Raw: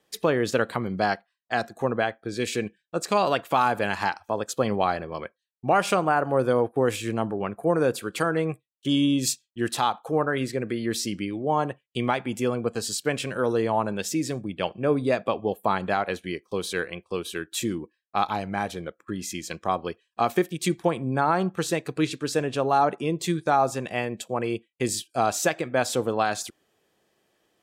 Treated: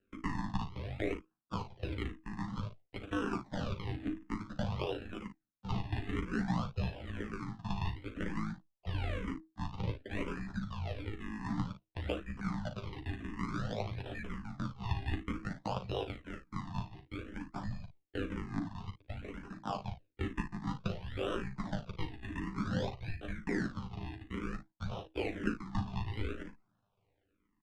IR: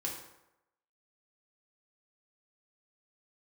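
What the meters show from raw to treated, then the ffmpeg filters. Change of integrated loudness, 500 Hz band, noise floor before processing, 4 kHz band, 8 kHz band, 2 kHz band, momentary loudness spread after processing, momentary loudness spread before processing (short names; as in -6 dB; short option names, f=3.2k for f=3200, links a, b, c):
-13.5 dB, -18.0 dB, -76 dBFS, -15.0 dB, -28.0 dB, -14.0 dB, 8 LU, 9 LU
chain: -filter_complex "[0:a]tremolo=f=54:d=0.919,acrusher=samples=35:mix=1:aa=0.000001:lfo=1:lforange=35:lforate=0.55,afreqshift=-320,aecho=1:1:10|41|56:0.596|0.282|0.266,acompressor=threshold=-32dB:ratio=1.5,lowpass=3.1k,asplit=2[a][b];[b]afreqshift=-0.99[c];[a][c]amix=inputs=2:normalize=1,volume=-3dB"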